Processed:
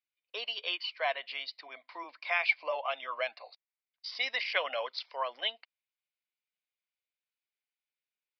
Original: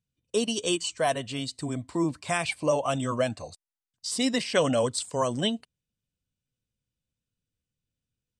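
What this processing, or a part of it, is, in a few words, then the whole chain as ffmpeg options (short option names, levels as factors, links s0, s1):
musical greeting card: -af "aresample=11025,aresample=44100,highpass=f=660:w=0.5412,highpass=f=660:w=1.3066,equalizer=f=2200:t=o:w=0.37:g=11.5,volume=0.596"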